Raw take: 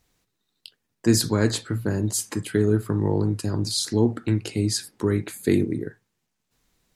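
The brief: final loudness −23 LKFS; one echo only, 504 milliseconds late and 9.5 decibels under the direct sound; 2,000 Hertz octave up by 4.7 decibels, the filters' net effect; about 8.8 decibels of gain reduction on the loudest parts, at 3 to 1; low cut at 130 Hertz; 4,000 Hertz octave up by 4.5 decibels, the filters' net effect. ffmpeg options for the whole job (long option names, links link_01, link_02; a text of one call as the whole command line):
ffmpeg -i in.wav -af "highpass=130,equalizer=frequency=2000:width_type=o:gain=5,equalizer=frequency=4000:width_type=o:gain=4.5,acompressor=threshold=-26dB:ratio=3,aecho=1:1:504:0.335,volume=6.5dB" out.wav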